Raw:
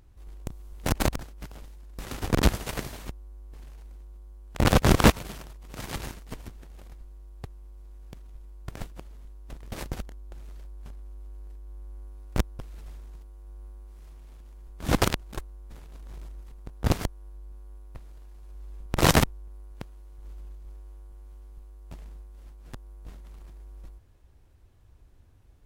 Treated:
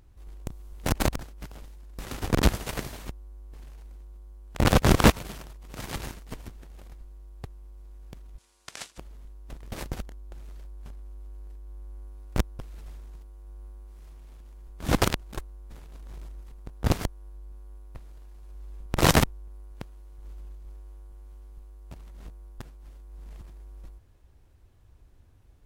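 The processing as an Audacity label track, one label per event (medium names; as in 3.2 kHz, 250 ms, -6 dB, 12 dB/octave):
8.380000	8.980000	frequency weighting ITU-R 468
21.940000	23.410000	reverse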